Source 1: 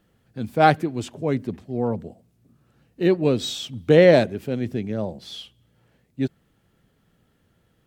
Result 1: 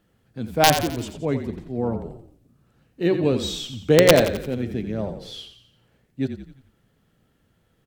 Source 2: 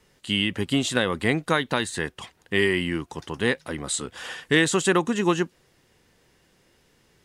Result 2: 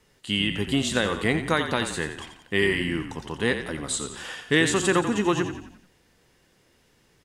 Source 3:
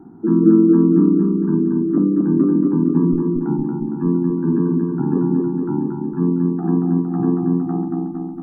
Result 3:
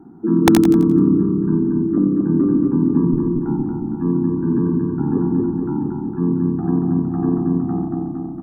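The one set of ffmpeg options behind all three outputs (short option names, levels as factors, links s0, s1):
-filter_complex "[0:a]bandreject=f=183.8:t=h:w=4,bandreject=f=367.6:t=h:w=4,bandreject=f=551.4:t=h:w=4,bandreject=f=735.2:t=h:w=4,bandreject=f=919:t=h:w=4,bandreject=f=1102.8:t=h:w=4,bandreject=f=1286.6:t=h:w=4,bandreject=f=1470.4:t=h:w=4,bandreject=f=1654.2:t=h:w=4,bandreject=f=1838:t=h:w=4,bandreject=f=2021.8:t=h:w=4,bandreject=f=2205.6:t=h:w=4,bandreject=f=2389.4:t=h:w=4,bandreject=f=2573.2:t=h:w=4,bandreject=f=2757:t=h:w=4,bandreject=f=2940.8:t=h:w=4,bandreject=f=3124.6:t=h:w=4,bandreject=f=3308.4:t=h:w=4,bandreject=f=3492.2:t=h:w=4,bandreject=f=3676:t=h:w=4,bandreject=f=3859.8:t=h:w=4,bandreject=f=4043.6:t=h:w=4,bandreject=f=4227.4:t=h:w=4,bandreject=f=4411.2:t=h:w=4,bandreject=f=4595:t=h:w=4,bandreject=f=4778.8:t=h:w=4,bandreject=f=4962.6:t=h:w=4,aeval=exprs='(mod(1.33*val(0)+1,2)-1)/1.33':c=same,asplit=6[s0][s1][s2][s3][s4][s5];[s1]adelay=87,afreqshift=-34,volume=0.355[s6];[s2]adelay=174,afreqshift=-68,volume=0.166[s7];[s3]adelay=261,afreqshift=-102,volume=0.0785[s8];[s4]adelay=348,afreqshift=-136,volume=0.0367[s9];[s5]adelay=435,afreqshift=-170,volume=0.0174[s10];[s0][s6][s7][s8][s9][s10]amix=inputs=6:normalize=0,volume=0.891"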